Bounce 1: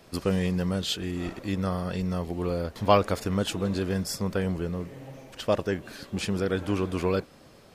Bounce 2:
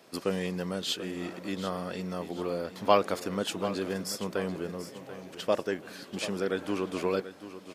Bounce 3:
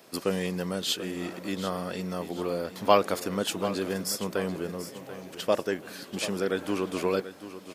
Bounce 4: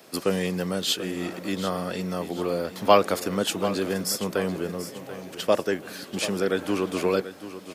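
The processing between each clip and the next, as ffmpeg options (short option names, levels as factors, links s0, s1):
-af "highpass=230,aecho=1:1:737|1474|2211|2948:0.224|0.0851|0.0323|0.0123,volume=0.794"
-af "highshelf=f=10000:g=9,volume=1.26"
-filter_complex "[0:a]bandreject=f=990:w=27,acrossover=split=120|680|5800[s0][s1][s2][s3];[s0]acrusher=samples=14:mix=1:aa=0.000001:lfo=1:lforange=14:lforate=3.7[s4];[s4][s1][s2][s3]amix=inputs=4:normalize=0,volume=1.5"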